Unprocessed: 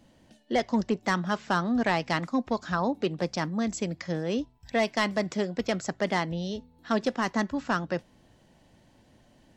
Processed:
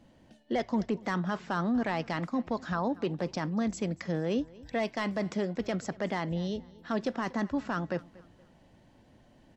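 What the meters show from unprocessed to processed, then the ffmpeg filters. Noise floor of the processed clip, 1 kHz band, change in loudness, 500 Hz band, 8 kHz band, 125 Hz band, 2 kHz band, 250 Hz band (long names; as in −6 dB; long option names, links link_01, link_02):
−61 dBFS, −5.0 dB, −3.5 dB, −3.5 dB, −7.5 dB, −1.5 dB, −6.0 dB, −2.0 dB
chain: -af "highshelf=frequency=3800:gain=-8,alimiter=limit=-21.5dB:level=0:latency=1:release=14,aecho=1:1:236|472|708:0.0794|0.0286|0.0103"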